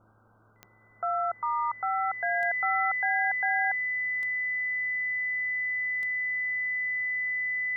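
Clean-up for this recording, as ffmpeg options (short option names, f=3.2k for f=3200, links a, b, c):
-af "adeclick=t=4,bandreject=f=108.7:t=h:w=4,bandreject=f=217.4:t=h:w=4,bandreject=f=326.1:t=h:w=4,bandreject=f=2k:w=30,afwtdn=0.0022"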